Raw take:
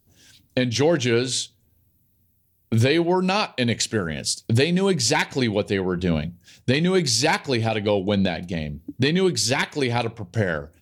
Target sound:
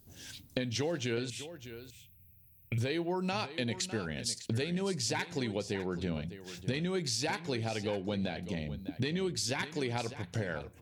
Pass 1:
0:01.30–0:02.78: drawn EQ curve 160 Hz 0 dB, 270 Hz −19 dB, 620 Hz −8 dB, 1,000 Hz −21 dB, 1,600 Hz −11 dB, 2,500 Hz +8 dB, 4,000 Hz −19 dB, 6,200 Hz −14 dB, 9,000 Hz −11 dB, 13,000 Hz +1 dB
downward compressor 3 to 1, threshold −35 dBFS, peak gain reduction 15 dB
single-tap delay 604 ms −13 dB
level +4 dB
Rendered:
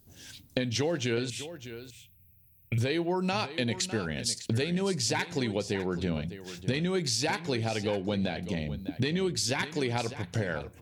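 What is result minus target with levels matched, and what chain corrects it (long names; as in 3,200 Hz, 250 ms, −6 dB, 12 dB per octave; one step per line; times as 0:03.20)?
downward compressor: peak gain reduction −4.5 dB
0:01.30–0:02.78: drawn EQ curve 160 Hz 0 dB, 270 Hz −19 dB, 620 Hz −8 dB, 1,000 Hz −21 dB, 1,600 Hz −11 dB, 2,500 Hz +8 dB, 4,000 Hz −19 dB, 6,200 Hz −14 dB, 9,000 Hz −11 dB, 13,000 Hz +1 dB
downward compressor 3 to 1, threshold −41.5 dBFS, peak gain reduction 19.5 dB
single-tap delay 604 ms −13 dB
level +4 dB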